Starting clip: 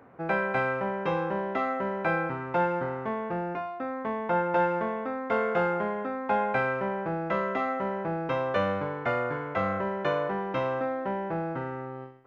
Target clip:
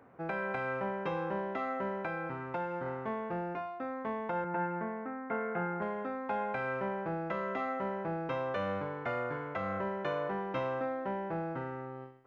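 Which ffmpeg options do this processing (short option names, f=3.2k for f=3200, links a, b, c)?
-filter_complex "[0:a]asettb=1/sr,asplit=3[a][b][c];[a]atrim=end=1.994[d];[b]atrim=start=1.99:end=2.86,asetpts=PTS-STARTPTS,afade=t=in:d=0.004:c=qsin,afade=t=out:st=0.866:d=0.004:c=qsin,acompressor=threshold=-29dB:ratio=2.5[e];[c]atrim=start=2.856[f];[d][e]acrossfade=d=0.004:c1=hsin:c2=qsin[g];[g][f]acrossfade=d=0.004:c1=qsin:c2=hsin,asettb=1/sr,asplit=3[h][i][j];[h]atrim=end=4.444[k];[i]atrim=start=4.44:end=5.82,asetpts=PTS-STARTPTS,afade=t=in:d=0.004:c=qsin,afade=t=out:st=1.376:d=0.004:c=qsin,highpass=130,equalizer=f=180:t=q:w=4:g=4,equalizer=f=550:t=q:w=4:g=-9,equalizer=f=1.1k:t=q:w=4:g=-5,lowpass=f=2.1k:w=0.5412,lowpass=f=2.1k:w=1.3066[l];[j]atrim=start=5.816[m];[k][l]acrossfade=d=0.004:c1=hsin:c2=qsin[n];[n][m]acrossfade=d=0.004:c1=qsin:c2=hsin,alimiter=limit=-19.5dB:level=0:latency=1:release=209,volume=-5dB"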